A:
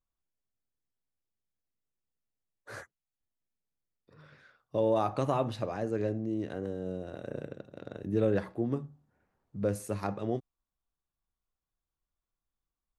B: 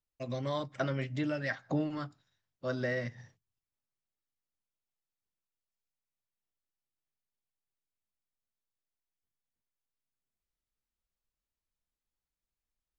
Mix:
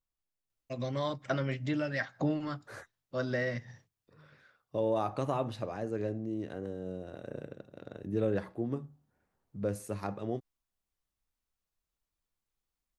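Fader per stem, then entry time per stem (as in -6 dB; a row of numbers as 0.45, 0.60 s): -3.0, +1.0 dB; 0.00, 0.50 s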